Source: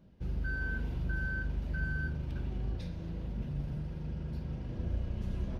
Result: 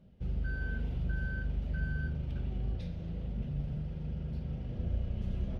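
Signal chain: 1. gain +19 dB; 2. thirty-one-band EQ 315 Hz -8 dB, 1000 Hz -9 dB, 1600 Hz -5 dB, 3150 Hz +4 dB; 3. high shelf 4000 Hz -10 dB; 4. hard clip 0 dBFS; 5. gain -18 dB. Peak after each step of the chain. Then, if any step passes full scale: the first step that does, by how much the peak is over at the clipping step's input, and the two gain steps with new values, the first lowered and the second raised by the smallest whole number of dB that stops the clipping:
-4.5, -5.0, -5.0, -5.0, -23.0 dBFS; no overload

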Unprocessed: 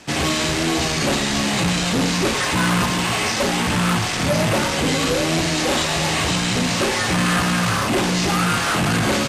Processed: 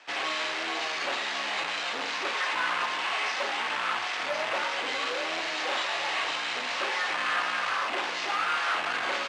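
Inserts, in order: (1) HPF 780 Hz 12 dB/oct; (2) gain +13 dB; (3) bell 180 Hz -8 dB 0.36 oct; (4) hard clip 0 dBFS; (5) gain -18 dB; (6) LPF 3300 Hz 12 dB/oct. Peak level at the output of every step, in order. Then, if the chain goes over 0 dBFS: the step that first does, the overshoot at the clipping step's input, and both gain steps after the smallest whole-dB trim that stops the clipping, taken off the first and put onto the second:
-9.0, +4.0, +4.0, 0.0, -18.0, -18.0 dBFS; step 2, 4.0 dB; step 2 +9 dB, step 5 -14 dB

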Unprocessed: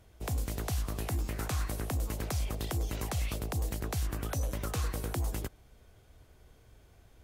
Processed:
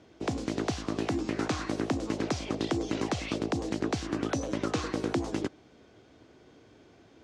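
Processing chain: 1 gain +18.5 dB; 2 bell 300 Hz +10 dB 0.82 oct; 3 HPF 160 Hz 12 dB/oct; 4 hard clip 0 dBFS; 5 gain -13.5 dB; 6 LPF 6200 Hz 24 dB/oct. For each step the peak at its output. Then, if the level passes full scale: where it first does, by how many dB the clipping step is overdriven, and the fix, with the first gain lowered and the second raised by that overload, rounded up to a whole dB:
-6.5, -1.0, -2.5, -2.5, -16.0, -17.0 dBFS; no overload

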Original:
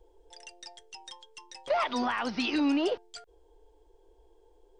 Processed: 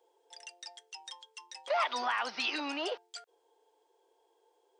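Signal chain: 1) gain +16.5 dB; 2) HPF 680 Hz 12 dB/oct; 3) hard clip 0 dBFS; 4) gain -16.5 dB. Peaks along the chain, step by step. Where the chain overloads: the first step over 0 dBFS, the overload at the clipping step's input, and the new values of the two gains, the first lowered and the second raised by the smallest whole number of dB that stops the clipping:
-1.5, -3.0, -3.0, -19.5 dBFS; no overload

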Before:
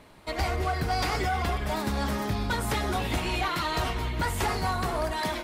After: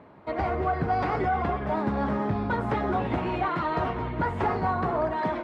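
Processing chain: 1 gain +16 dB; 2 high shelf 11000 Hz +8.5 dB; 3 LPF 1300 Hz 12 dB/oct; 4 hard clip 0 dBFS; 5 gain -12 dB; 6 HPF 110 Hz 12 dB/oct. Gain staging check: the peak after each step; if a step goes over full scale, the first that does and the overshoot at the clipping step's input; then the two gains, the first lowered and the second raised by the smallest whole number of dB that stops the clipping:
-1.5, -1.0, -2.5, -2.5, -14.5, -13.5 dBFS; no overload

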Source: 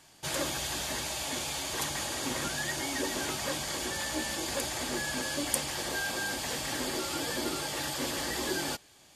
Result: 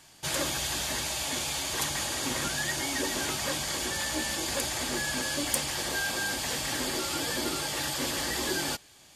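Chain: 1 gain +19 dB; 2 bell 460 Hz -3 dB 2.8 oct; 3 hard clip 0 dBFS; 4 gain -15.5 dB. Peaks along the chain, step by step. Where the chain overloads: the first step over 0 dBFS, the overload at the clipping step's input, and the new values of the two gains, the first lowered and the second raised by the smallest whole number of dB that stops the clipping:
+9.5, +9.5, 0.0, -15.5 dBFS; step 1, 9.5 dB; step 1 +9 dB, step 4 -5.5 dB

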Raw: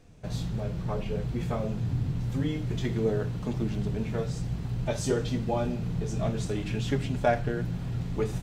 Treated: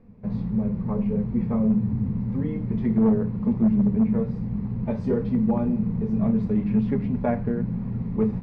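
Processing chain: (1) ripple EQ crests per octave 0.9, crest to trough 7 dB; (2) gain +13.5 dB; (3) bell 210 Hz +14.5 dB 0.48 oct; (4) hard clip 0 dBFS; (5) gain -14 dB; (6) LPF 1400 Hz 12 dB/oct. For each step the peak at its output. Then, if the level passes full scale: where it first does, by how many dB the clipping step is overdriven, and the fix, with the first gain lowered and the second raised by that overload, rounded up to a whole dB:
-12.5, +1.0, +6.0, 0.0, -14.0, -13.5 dBFS; step 2, 6.0 dB; step 2 +7.5 dB, step 5 -8 dB

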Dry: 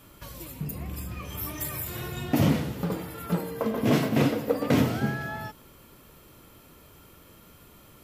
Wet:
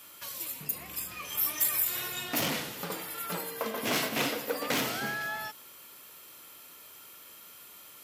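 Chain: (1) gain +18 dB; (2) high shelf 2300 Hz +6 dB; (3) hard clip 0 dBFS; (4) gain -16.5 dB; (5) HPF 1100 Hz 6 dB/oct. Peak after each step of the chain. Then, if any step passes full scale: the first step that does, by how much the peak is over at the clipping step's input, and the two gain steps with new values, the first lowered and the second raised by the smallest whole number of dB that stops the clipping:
+7.5, +8.0, 0.0, -16.5, -14.5 dBFS; step 1, 8.0 dB; step 1 +10 dB, step 4 -8.5 dB

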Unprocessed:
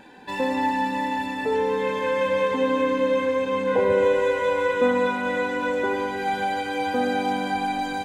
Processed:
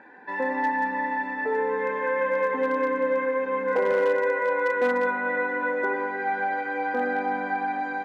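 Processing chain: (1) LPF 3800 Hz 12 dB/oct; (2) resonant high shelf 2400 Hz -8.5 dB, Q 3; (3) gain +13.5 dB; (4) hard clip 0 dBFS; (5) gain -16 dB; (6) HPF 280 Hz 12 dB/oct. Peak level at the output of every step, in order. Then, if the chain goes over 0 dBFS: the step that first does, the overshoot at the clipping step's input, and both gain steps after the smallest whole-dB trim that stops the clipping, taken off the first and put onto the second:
-8.5, -8.5, +5.0, 0.0, -16.0, -12.0 dBFS; step 3, 5.0 dB; step 3 +8.5 dB, step 5 -11 dB

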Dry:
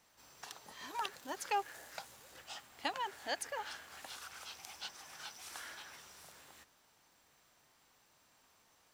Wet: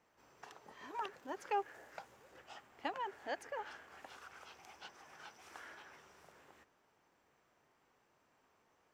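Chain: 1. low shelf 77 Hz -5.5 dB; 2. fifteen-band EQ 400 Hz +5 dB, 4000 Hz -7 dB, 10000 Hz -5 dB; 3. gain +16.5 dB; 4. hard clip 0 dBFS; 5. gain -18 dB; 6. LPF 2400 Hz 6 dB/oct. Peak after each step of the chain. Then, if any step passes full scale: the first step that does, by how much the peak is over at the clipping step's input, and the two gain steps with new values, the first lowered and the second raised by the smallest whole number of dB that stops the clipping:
-20.5, -21.5, -5.0, -5.0, -23.0, -24.5 dBFS; no overload

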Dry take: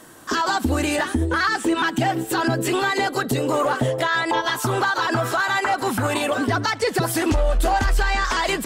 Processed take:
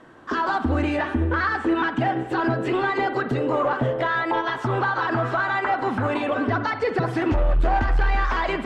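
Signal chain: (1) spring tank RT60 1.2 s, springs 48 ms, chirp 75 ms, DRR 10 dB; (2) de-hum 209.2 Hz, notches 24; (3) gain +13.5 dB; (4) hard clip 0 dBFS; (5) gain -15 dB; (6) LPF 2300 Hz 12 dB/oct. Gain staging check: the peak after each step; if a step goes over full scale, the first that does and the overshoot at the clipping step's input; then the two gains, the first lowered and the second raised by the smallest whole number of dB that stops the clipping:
-8.5, -8.5, +5.0, 0.0, -15.0, -14.5 dBFS; step 3, 5.0 dB; step 3 +8.5 dB, step 5 -10 dB

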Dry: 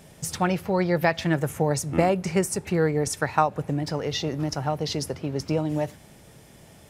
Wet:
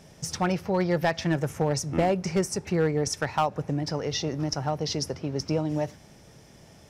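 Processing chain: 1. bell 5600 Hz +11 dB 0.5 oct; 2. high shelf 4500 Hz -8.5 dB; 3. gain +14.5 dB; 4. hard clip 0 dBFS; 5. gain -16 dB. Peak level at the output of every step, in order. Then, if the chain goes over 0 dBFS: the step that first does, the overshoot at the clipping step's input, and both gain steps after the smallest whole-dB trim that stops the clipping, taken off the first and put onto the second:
-4.5, -5.0, +9.5, 0.0, -16.0 dBFS; step 3, 9.5 dB; step 3 +4.5 dB, step 5 -6 dB

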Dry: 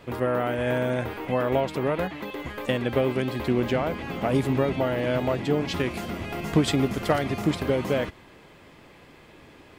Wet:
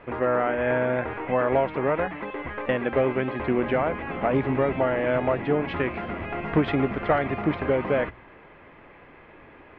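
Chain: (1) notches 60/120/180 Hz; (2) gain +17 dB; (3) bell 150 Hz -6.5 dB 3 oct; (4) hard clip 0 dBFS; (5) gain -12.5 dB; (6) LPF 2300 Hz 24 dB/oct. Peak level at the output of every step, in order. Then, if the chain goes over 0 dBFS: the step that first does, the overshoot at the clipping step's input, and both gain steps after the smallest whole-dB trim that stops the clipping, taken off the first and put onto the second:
-9.0, +8.0, +7.0, 0.0, -12.5, -11.5 dBFS; step 2, 7.0 dB; step 2 +10 dB, step 5 -5.5 dB

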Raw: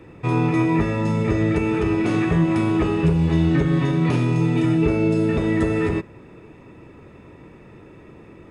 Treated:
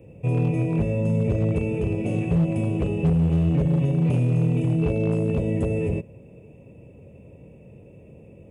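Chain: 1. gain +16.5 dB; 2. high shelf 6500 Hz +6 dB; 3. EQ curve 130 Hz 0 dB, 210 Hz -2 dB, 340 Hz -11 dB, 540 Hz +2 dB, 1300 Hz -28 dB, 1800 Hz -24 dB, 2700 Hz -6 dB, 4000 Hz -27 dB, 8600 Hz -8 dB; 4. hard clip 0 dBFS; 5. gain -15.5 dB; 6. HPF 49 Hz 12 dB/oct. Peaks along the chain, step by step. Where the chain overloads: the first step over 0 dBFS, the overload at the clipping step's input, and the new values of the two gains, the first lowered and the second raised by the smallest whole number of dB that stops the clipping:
+8.5, +8.5, +6.0, 0.0, -15.5, -11.5 dBFS; step 1, 6.0 dB; step 1 +10.5 dB, step 5 -9.5 dB

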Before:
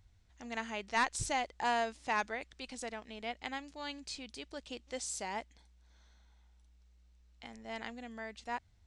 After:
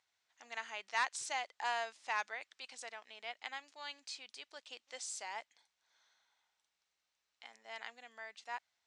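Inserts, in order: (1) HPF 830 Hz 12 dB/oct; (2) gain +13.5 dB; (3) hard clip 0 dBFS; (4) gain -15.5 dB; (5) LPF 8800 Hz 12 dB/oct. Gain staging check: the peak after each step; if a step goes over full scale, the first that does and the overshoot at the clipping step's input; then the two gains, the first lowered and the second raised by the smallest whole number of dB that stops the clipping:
-18.5, -5.0, -5.0, -20.5, -20.5 dBFS; no overload

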